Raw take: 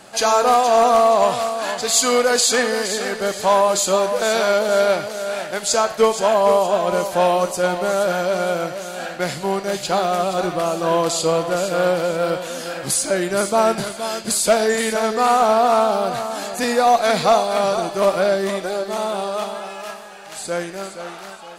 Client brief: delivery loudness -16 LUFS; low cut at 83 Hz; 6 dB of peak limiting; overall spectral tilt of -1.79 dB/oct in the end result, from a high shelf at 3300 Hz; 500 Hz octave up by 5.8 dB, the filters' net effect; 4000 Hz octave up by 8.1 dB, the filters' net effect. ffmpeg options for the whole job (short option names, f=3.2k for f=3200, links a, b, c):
-af "highpass=83,equalizer=f=500:t=o:g=7,highshelf=f=3.3k:g=8.5,equalizer=f=4k:t=o:g=3.5,volume=-1.5dB,alimiter=limit=-5.5dB:level=0:latency=1"